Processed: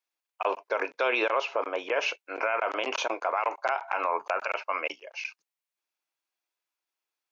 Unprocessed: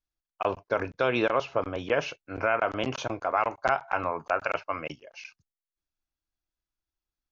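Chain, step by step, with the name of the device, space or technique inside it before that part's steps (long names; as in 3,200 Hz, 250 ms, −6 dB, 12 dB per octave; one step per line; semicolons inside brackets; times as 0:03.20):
laptop speaker (high-pass filter 390 Hz 24 dB per octave; parametric band 950 Hz +4.5 dB 0.39 octaves; parametric band 2,400 Hz +6 dB 0.52 octaves; brickwall limiter −19.5 dBFS, peak gain reduction 10 dB)
0:01.49–0:01.96: dynamic equaliser 4,100 Hz, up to −5 dB, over −48 dBFS, Q 0.89
level +3.5 dB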